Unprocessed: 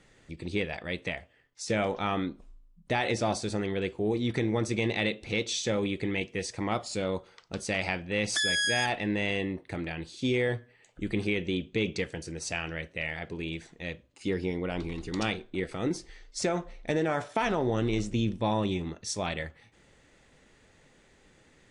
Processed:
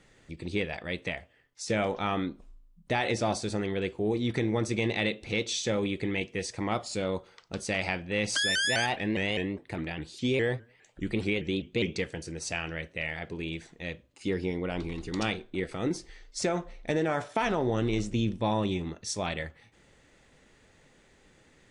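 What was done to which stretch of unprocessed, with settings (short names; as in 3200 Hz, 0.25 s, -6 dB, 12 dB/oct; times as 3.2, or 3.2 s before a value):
8.35–11.95 shaped vibrato saw up 4.9 Hz, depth 160 cents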